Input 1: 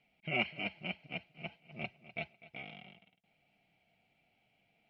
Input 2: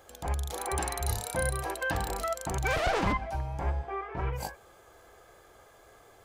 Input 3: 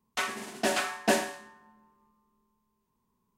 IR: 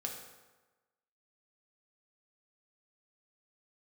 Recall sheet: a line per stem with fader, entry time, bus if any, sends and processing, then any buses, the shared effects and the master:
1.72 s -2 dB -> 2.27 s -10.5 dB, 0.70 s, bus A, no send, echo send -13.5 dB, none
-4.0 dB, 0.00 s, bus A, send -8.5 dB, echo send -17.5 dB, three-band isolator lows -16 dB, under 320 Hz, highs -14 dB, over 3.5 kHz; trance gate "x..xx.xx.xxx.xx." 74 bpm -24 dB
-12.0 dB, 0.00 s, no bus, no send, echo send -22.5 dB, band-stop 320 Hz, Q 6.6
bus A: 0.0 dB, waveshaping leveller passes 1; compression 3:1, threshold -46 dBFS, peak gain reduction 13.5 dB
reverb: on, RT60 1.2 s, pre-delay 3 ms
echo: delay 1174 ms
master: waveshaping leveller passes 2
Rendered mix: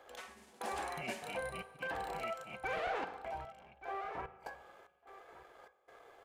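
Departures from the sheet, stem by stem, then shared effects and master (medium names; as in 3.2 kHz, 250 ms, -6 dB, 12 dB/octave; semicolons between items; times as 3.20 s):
stem 3 -12.0 dB -> -19.5 dB; master: missing waveshaping leveller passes 2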